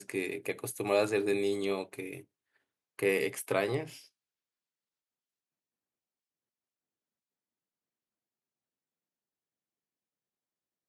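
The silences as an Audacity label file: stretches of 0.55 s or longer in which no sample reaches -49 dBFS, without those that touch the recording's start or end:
2.220000	2.990000	silence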